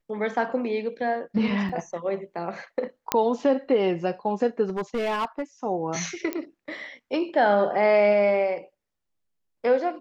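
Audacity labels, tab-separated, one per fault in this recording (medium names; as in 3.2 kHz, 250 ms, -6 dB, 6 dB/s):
1.690000	1.700000	dropout 5.1 ms
3.120000	3.120000	pop -5 dBFS
4.640000	5.420000	clipped -22.5 dBFS
6.330000	6.330000	pop -14 dBFS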